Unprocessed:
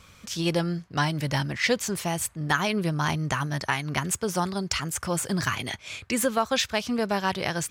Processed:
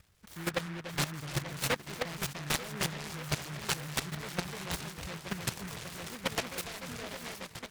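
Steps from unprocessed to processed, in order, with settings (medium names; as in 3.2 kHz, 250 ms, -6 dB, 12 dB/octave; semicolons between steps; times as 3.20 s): fade out at the end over 1.78 s; reverb removal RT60 1 s; ten-band graphic EQ 250 Hz -9 dB, 1 kHz -4 dB, 4 kHz +3 dB; on a send: echo whose repeats swap between lows and highs 297 ms, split 1.6 kHz, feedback 81%, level -3 dB; on the sum: level held to a coarse grid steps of 13 dB; distance through air 360 m; delay time shaken by noise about 1.4 kHz, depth 0.31 ms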